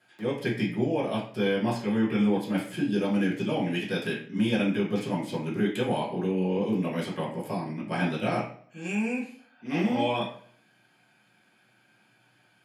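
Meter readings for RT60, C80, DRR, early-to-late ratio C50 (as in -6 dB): 0.55 s, 10.5 dB, -8.0 dB, 6.0 dB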